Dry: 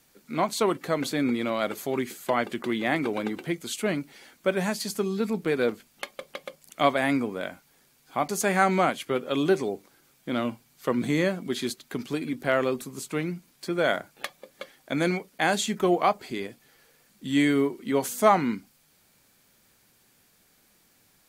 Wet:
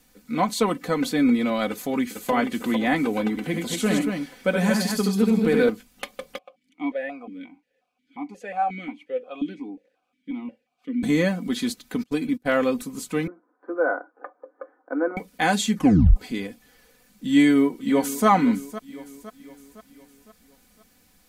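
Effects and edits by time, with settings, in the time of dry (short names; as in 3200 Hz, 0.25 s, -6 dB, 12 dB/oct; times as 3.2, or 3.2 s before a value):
1.7–2.31 echo throw 0.45 s, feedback 50%, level -6 dB
3.3–5.69 tapped delay 72/96/231 ms -4.5/-10.5/-5 dB
6.38–11.03 vowel sequencer 5.6 Hz
12.03–12.61 gate -35 dBFS, range -26 dB
13.27–15.17 Chebyshev band-pass 300–1500 Hz, order 4
15.75 tape stop 0.41 s
17.29–18.27 echo throw 0.51 s, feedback 50%, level -14.5 dB
whole clip: low shelf 160 Hz +10.5 dB; comb 4 ms, depth 70%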